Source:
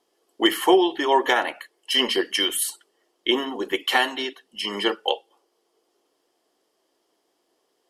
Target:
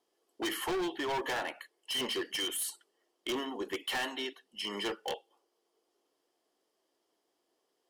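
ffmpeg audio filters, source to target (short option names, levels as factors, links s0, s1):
-af "volume=12.6,asoftclip=hard,volume=0.0794,volume=0.376"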